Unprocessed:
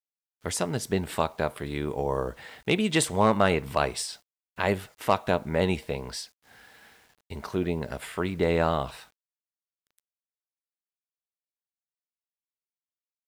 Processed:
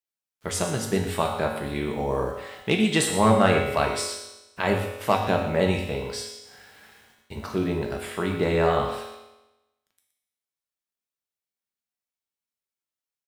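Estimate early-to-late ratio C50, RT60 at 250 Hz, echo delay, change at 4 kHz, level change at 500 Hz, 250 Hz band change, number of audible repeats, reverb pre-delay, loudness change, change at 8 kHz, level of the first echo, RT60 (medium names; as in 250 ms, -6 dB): 4.5 dB, 1.0 s, 120 ms, +3.0 dB, +3.0 dB, +3.5 dB, 1, 4 ms, +3.0 dB, +3.0 dB, -12.0 dB, 1.0 s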